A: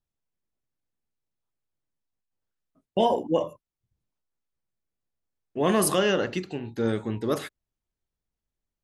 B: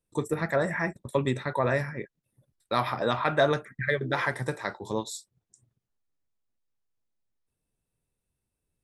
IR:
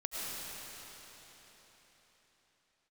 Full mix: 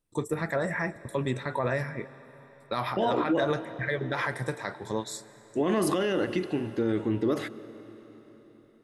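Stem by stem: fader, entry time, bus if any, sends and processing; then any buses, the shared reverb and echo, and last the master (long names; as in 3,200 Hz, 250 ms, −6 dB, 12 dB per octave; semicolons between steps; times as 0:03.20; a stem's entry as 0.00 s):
+0.5 dB, 0.00 s, send −21 dB, high-shelf EQ 6,200 Hz −11.5 dB; hollow resonant body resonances 320/2,000 Hz, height 9 dB
−1.0 dB, 0.00 s, send −21 dB, no processing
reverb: on, RT60 4.3 s, pre-delay 65 ms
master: brickwall limiter −17.5 dBFS, peak gain reduction 10 dB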